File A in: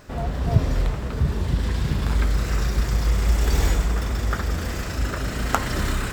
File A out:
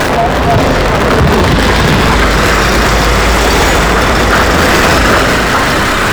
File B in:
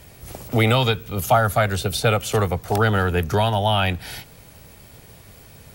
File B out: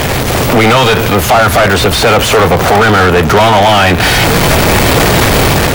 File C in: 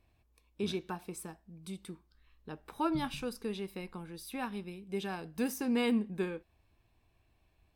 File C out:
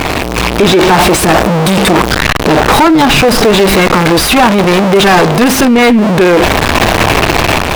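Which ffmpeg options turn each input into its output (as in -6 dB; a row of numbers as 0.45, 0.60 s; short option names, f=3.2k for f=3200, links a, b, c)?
-filter_complex "[0:a]aeval=exprs='val(0)+0.5*0.141*sgn(val(0))':c=same,asplit=2[a][b];[b]highpass=f=720:p=1,volume=36dB,asoftclip=type=tanh:threshold=0dB[c];[a][c]amix=inputs=2:normalize=0,lowpass=f=2.2k:p=1,volume=-6dB,dynaudnorm=f=140:g=5:m=11.5dB,volume=-1dB"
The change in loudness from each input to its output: +16.0, +13.0, +29.0 LU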